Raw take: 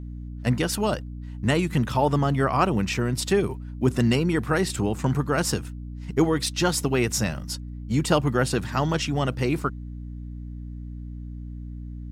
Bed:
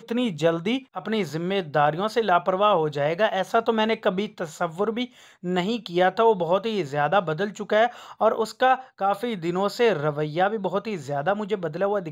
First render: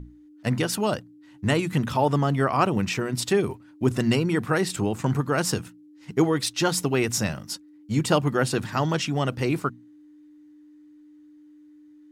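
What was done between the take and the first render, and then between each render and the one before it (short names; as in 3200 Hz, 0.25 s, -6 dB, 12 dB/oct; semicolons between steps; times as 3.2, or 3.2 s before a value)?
notches 60/120/180/240 Hz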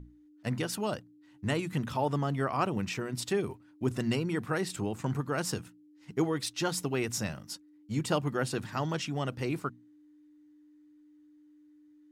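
gain -8 dB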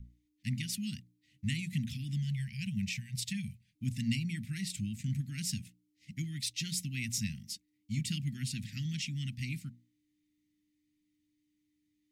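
Chebyshev band-stop 230–2100 Hz, order 4; 2.17–3.76 spectral gain 230–1500 Hz -28 dB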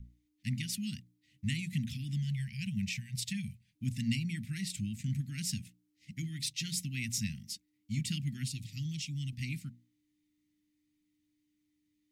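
6.14–6.79 notches 50/100/150/200/250/300/350/400/450 Hz; 8.48–9.33 fixed phaser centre 320 Hz, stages 8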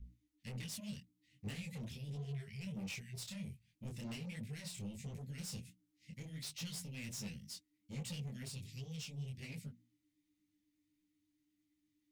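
soft clip -38 dBFS, distortion -8 dB; detuned doubles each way 47 cents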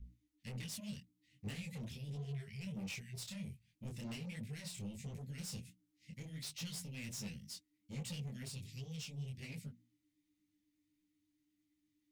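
nothing audible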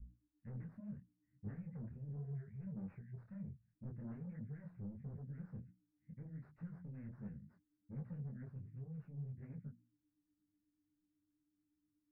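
elliptic low-pass 1600 Hz, stop band 50 dB; bell 780 Hz -6.5 dB 2.1 oct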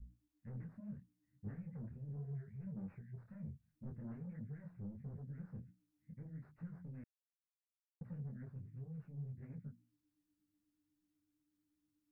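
3.28–3.97 doubler 13 ms -6 dB; 7.04–8.01 mute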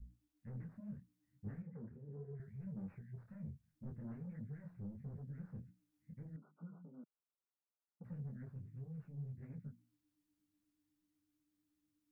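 1.62–2.4 speaker cabinet 110–2000 Hz, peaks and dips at 130 Hz -6 dB, 430 Hz +8 dB, 650 Hz -7 dB; 6.36–8.04 brick-wall FIR band-pass 160–1500 Hz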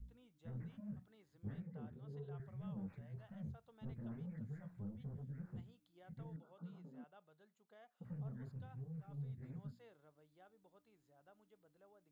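add bed -43.5 dB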